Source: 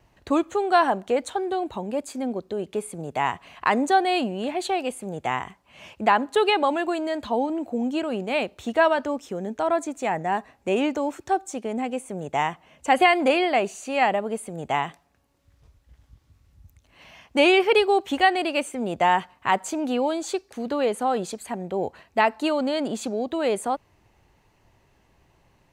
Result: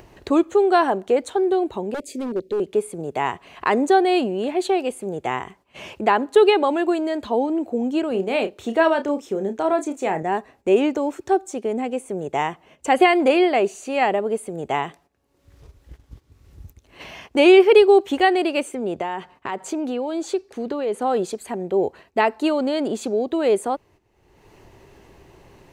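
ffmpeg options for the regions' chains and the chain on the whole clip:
ffmpeg -i in.wav -filter_complex "[0:a]asettb=1/sr,asplit=3[link_01][link_02][link_03];[link_01]atrim=end=1.944[link_04];[link_02]atrim=start=1.94:end=2.6,asetpts=PTS-STARTPTS,afade=type=in:duration=0.004:curve=qsin,afade=type=out:start_time=0.656:duration=0.004:curve=qsin,asuperstop=centerf=1100:order=12:qfactor=0.88,aeval=exprs='0.0596*(abs(mod(val(0)/0.0596+3,4)-2)-1)':channel_layout=same[link_05];[link_03]atrim=start=2.596[link_06];[link_04][link_05]acrossfade=duration=0.004:curve1=hsin:curve2=qsin[link_07];[link_07][link_06]acrossfade=duration=0.004:curve1=qsin:curve2=hsin,asettb=1/sr,asplit=3[link_08][link_09][link_10];[link_08]atrim=end=8.114[link_11];[link_09]atrim=start=8.11:end=10.23,asetpts=PTS-STARTPTS,afade=type=in:duration=0.004:curve=qsin,afade=type=out:start_time=2.116:duration=0.004:curve=qsin,highpass=81,asplit=2[link_12][link_13];[link_13]adelay=31,volume=-9dB[link_14];[link_12][link_14]amix=inputs=2:normalize=0,atrim=end_sample=93492[link_15];[link_10]atrim=start=10.226[link_16];[link_11][link_15]acrossfade=duration=0.004:curve1=hsin:curve2=qsin[link_17];[link_17][link_16]acrossfade=duration=0.004:curve1=qsin:curve2=hsin,asettb=1/sr,asplit=3[link_18][link_19][link_20];[link_18]atrim=end=18.754[link_21];[link_19]atrim=start=18.75:end=21.02,asetpts=PTS-STARTPTS,afade=type=in:duration=0.004:curve=qsin,afade=type=out:start_time=2.266:duration=0.004:curve=qsin,highshelf=frequency=9500:gain=-8,bandreject=frequency=50:width_type=h:width=6,bandreject=frequency=100:width_type=h:width=6,bandreject=frequency=150:width_type=h:width=6,acompressor=threshold=-25dB:ratio=4:attack=3.2:release=140:knee=1:detection=peak[link_22];[link_20]atrim=start=21.016[link_23];[link_21][link_22]acrossfade=duration=0.004:curve1=hsin:curve2=qsin[link_24];[link_24][link_23]acrossfade=duration=0.004:curve1=qsin:curve2=hsin,agate=range=-13dB:threshold=-51dB:ratio=16:detection=peak,equalizer=frequency=390:width=2.1:gain=9,acompressor=mode=upward:threshold=-29dB:ratio=2.5" out.wav

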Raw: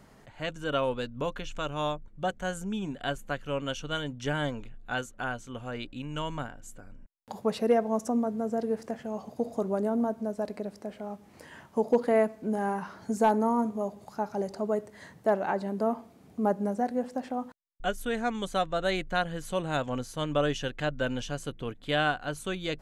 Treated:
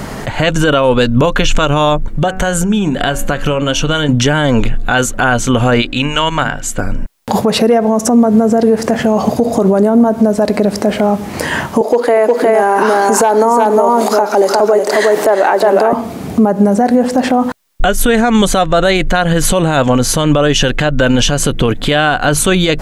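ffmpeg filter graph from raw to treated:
ffmpeg -i in.wav -filter_complex "[0:a]asettb=1/sr,asplit=3[link_01][link_02][link_03];[link_01]atrim=end=2.104[link_04];[link_02]atrim=start=2.1:end=4.09,asetpts=PTS-STARTPTS,afade=type=in:duration=0.004:curve=qsin,afade=type=out:start_time=1.986:duration=0.004:curve=qsin,acompressor=threshold=-41dB:ratio=12:attack=3.2:release=140:knee=1:detection=peak,bandreject=frequency=93.82:width_type=h:width=4,bandreject=frequency=187.64:width_type=h:width=4,bandreject=frequency=281.46:width_type=h:width=4,bandreject=frequency=375.28:width_type=h:width=4,bandreject=frequency=469.1:width_type=h:width=4,bandreject=frequency=562.92:width_type=h:width=4,bandreject=frequency=656.74:width_type=h:width=4,bandreject=frequency=750.56:width_type=h:width=4,bandreject=frequency=844.38:width_type=h:width=4,bandreject=frequency=938.2:width_type=h:width=4,bandreject=frequency=1032.02:width_type=h:width=4,bandreject=frequency=1125.84:width_type=h:width=4,bandreject=frequency=1219.66:width_type=h:width=4,bandreject=frequency=1313.48:width_type=h:width=4,bandreject=frequency=1407.3:width_type=h:width=4,bandreject=frequency=1501.12:width_type=h:width=4,bandreject=frequency=1594.94:width_type=h:width=4,bandreject=frequency=1688.76:width_type=h:width=4,bandreject=frequency=1782.58:width_type=h:width=4,bandreject=frequency=1876.4:width_type=h:width=4,bandreject=frequency=1970.22:width_type=h:width=4,bandreject=frequency=2064.04:width_type=h:width=4,bandreject=frequency=2157.86:width_type=h:width=4,bandreject=frequency=2251.68:width_type=h:width=4,bandreject=frequency=2345.5:width_type=h:width=4,bandreject=frequency=2439.32:width_type=h:width=4,bandreject=frequency=2533.14:width_type=h:width=4,bandreject=frequency=2626.96:width_type=h:width=4,bandreject=frequency=2720.78:width_type=h:width=4,bandreject=frequency=2814.6:width_type=h:width=4[link_05];[link_03]atrim=start=4.086[link_06];[link_04][link_05]acrossfade=duration=0.004:curve1=hsin:curve2=qsin[link_07];[link_07][link_06]acrossfade=duration=0.004:curve1=qsin:curve2=hsin,asettb=1/sr,asplit=3[link_08][link_09][link_10];[link_08]atrim=end=5.824[link_11];[link_09]atrim=start=5.82:end=6.78,asetpts=PTS-STARTPTS,afade=type=in:duration=0.004:curve=qsin,afade=type=out:start_time=0.956:duration=0.004:curve=qsin,agate=range=-9dB:threshold=-34dB:ratio=16:release=100:detection=peak,equalizer=frequency=2600:width=0.31:gain=9,bandreject=frequency=50:width_type=h:width=6,bandreject=frequency=100:width_type=h:width=6,bandreject=frequency=150:width_type=h:width=6,bandreject=frequency=200:width_type=h:width=6,bandreject=frequency=250:width_type=h:width=6,bandreject=frequency=300:width_type=h:width=6,bandreject=frequency=350:width_type=h:width=6[link_12];[link_10]atrim=start=6.776[link_13];[link_11][link_12]acrossfade=duration=0.004:curve1=hsin:curve2=qsin[link_14];[link_14][link_13]acrossfade=duration=0.004:curve1=qsin:curve2=hsin,asettb=1/sr,asplit=3[link_15][link_16][link_17];[link_15]atrim=end=11.814[link_18];[link_16]atrim=start=11.81:end=15.93,asetpts=PTS-STARTPTS,afade=type=in:duration=0.004:curve=qsin,afade=type=out:start_time=4.116:duration=0.004:curve=qsin,highpass=frequency=310:width=0.5412,highpass=frequency=310:width=1.3066,acompressor=mode=upward:threshold=-36dB:ratio=2.5:attack=3.2:release=140:knee=2.83:detection=peak,aecho=1:1:359:0.562,atrim=end_sample=181692[link_19];[link_17]atrim=start=15.926[link_20];[link_18][link_19]acrossfade=duration=0.004:curve1=hsin:curve2=qsin[link_21];[link_21][link_20]acrossfade=duration=0.004:curve1=qsin:curve2=hsin,acompressor=threshold=-33dB:ratio=6,alimiter=level_in=33dB:limit=-1dB:release=50:level=0:latency=1,volume=-1dB" out.wav

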